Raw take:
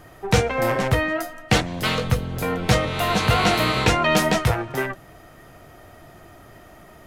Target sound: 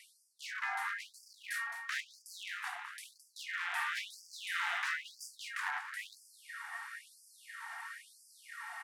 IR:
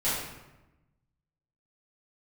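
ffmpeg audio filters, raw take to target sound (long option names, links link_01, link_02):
-filter_complex "[0:a]aeval=exprs='val(0)*sin(2*PI*450*n/s)':channel_layout=same,acrossover=split=150|6200[link_01][link_02][link_03];[link_01]dynaudnorm=framelen=130:gausssize=3:maxgain=9.5dB[link_04];[link_02]volume=19.5dB,asoftclip=hard,volume=-19.5dB[link_05];[link_04][link_05][link_03]amix=inputs=3:normalize=0,lowshelf=frequency=150:width_type=q:width=1.5:gain=-6,areverse,acompressor=threshold=-36dB:ratio=20,areverse,aeval=exprs='0.02*(abs(mod(val(0)/0.02+3,4)-2)-1)':channel_layout=same,equalizer=frequency=2200:width_type=o:width=0.76:gain=12,aecho=1:1:172|344|516|688:0.251|0.0904|0.0326|0.0117,asetrate=35280,aresample=44100,afftfilt=real='re*gte(b*sr/1024,680*pow(4700/680,0.5+0.5*sin(2*PI*1*pts/sr)))':imag='im*gte(b*sr/1024,680*pow(4700/680,0.5+0.5*sin(2*PI*1*pts/sr)))':win_size=1024:overlap=0.75,volume=3dB"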